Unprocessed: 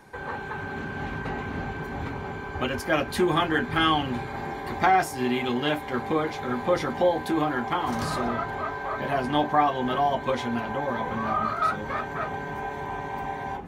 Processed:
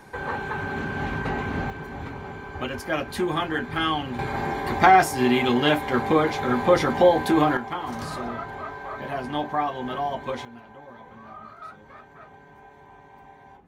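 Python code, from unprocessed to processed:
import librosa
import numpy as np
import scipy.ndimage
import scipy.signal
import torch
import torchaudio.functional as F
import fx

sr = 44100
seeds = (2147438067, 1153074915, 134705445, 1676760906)

y = fx.gain(x, sr, db=fx.steps((0.0, 4.0), (1.7, -2.5), (4.19, 5.5), (7.57, -4.0), (10.45, -16.5)))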